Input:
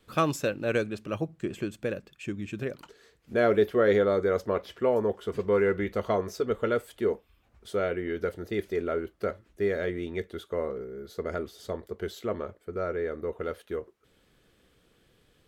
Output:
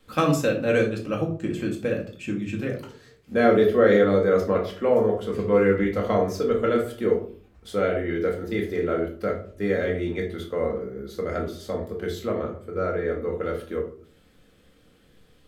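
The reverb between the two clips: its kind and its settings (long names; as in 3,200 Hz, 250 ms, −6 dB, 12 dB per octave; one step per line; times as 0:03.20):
rectangular room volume 400 cubic metres, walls furnished, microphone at 2.1 metres
level +1.5 dB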